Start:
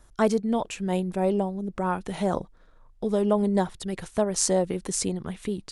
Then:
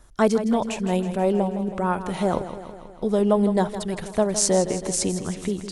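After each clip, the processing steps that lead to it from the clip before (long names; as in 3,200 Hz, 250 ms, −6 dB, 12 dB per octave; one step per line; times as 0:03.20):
feedback echo with a swinging delay time 161 ms, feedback 62%, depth 51 cents, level −11.5 dB
level +3 dB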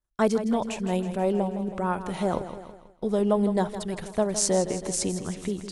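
downward expander −34 dBFS
level −3.5 dB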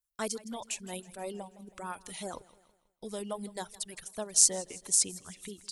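first-order pre-emphasis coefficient 0.9
reverb reduction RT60 1.6 s
level +5 dB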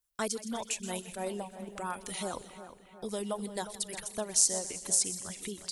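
downward compressor 1.5 to 1, threshold −39 dBFS, peak gain reduction 8 dB
echo with a time of its own for lows and highs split 2,900 Hz, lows 358 ms, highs 125 ms, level −12 dB
level +4.5 dB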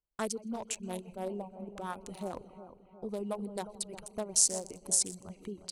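adaptive Wiener filter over 25 samples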